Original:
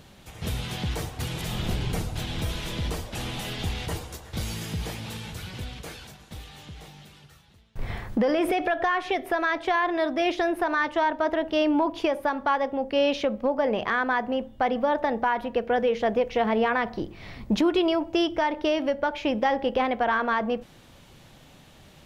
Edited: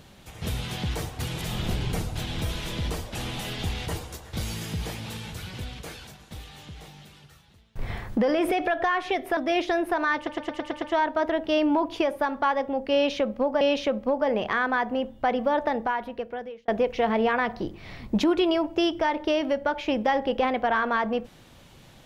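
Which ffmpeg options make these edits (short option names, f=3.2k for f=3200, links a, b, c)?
-filter_complex "[0:a]asplit=10[a][b][c][d][e][f][g][h][i][j];[a]atrim=end=9.372[k];[b]atrim=start=10.068:end=10.972[l];[c]atrim=start=10.858:end=10.972[m];[d]atrim=start=10.858:end=10.972[n];[e]atrim=start=10.858:end=10.972[o];[f]atrim=start=10.858:end=10.972[p];[g]atrim=start=10.858:end=10.972[q];[h]atrim=start=10.858:end=13.652[r];[i]atrim=start=12.978:end=16.05,asetpts=PTS-STARTPTS,afade=t=out:st=2.042:d=1.03[s];[j]atrim=start=16.05,asetpts=PTS-STARTPTS,afade=t=in:d=0.004:c=hsin[t];[k][l]acrossfade=d=0.004:c1=hsin:c2=hsin[u];[u][m]acrossfade=d=0.004:c1=hsin:c2=hsin[v];[v][n]acrossfade=d=0.004:c1=hsin:c2=hsin[w];[w][o]acrossfade=d=0.004:c1=hsin:c2=hsin[x];[x][p]acrossfade=d=0.004:c1=hsin:c2=hsin[y];[y][q]acrossfade=d=0.004:c1=hsin:c2=hsin[z];[z][r]acrossfade=d=0.004:c1=hsin:c2=hsin[aa];[s][t]concat=n=2:v=0:a=1[ab];[aa][ab]acrossfade=d=0.004:c1=hsin:c2=hsin"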